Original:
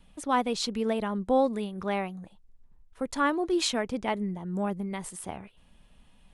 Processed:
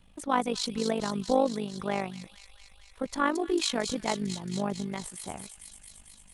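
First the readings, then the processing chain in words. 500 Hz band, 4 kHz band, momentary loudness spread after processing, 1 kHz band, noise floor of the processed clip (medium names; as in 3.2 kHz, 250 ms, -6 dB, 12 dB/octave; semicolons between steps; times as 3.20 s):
-1.0 dB, +0.5 dB, 18 LU, -1.0 dB, -55 dBFS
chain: feedback echo behind a high-pass 225 ms, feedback 76%, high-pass 4.1 kHz, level -4 dB; AM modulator 50 Hz, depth 55%; trim +2 dB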